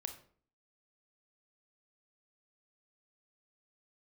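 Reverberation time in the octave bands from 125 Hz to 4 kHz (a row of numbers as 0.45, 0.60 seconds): 0.60, 0.65, 0.55, 0.45, 0.40, 0.35 seconds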